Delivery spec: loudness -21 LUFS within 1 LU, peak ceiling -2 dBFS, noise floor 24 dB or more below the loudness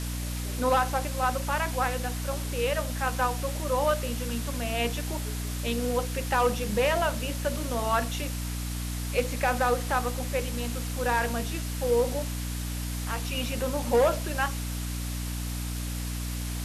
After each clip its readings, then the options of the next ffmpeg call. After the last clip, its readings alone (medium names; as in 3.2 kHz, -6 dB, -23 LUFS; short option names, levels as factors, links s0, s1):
hum 60 Hz; highest harmonic 300 Hz; hum level -30 dBFS; noise floor -33 dBFS; noise floor target -53 dBFS; loudness -29.0 LUFS; peak level -13.0 dBFS; loudness target -21.0 LUFS
-> -af "bandreject=f=60:t=h:w=4,bandreject=f=120:t=h:w=4,bandreject=f=180:t=h:w=4,bandreject=f=240:t=h:w=4,bandreject=f=300:t=h:w=4"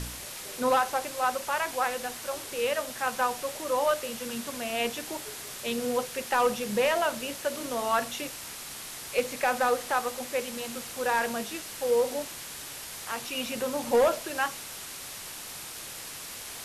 hum not found; noise floor -41 dBFS; noise floor target -54 dBFS
-> -af "afftdn=nr=13:nf=-41"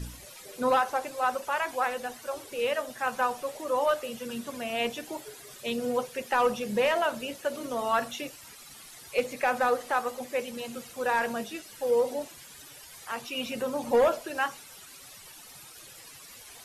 noise floor -49 dBFS; noise floor target -54 dBFS
-> -af "afftdn=nr=6:nf=-49"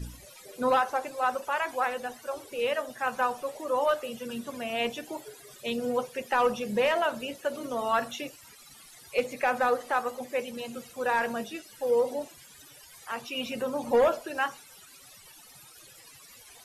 noise floor -52 dBFS; noise floor target -54 dBFS
-> -af "afftdn=nr=6:nf=-52"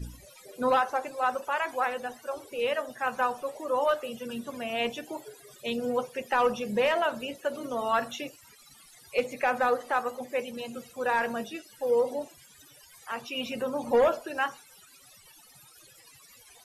noise floor -55 dBFS; loudness -29.5 LUFS; peak level -15.5 dBFS; loudness target -21.0 LUFS
-> -af "volume=2.66"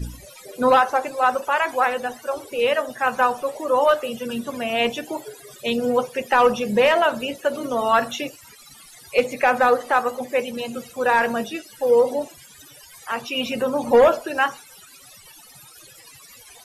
loudness -21.0 LUFS; peak level -7.0 dBFS; noise floor -47 dBFS